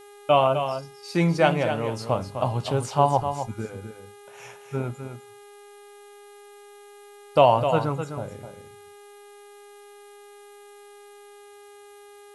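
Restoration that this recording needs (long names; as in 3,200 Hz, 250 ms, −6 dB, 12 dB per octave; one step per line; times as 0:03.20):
hum removal 408.7 Hz, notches 10
broadband denoise 21 dB, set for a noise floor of −48 dBFS
echo removal 255 ms −8.5 dB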